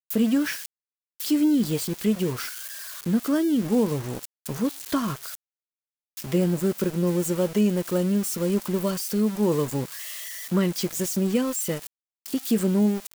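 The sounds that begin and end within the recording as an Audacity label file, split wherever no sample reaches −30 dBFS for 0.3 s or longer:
1.200000	5.350000	sound
6.170000	11.870000	sound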